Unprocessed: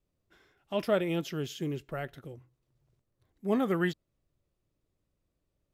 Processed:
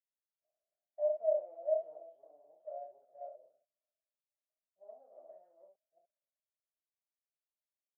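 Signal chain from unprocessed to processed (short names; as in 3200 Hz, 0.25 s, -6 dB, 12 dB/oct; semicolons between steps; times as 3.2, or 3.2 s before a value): reverse delay 0.216 s, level -3.5 dB; compressor, threshold -32 dBFS, peak gain reduction 11 dB; soft clip -39.5 dBFS, distortion -8 dB; tempo 0.72×; Butterworth band-pass 630 Hz, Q 7; early reflections 27 ms -4.5 dB, 65 ms -5 dB; three-band expander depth 70%; gain +7 dB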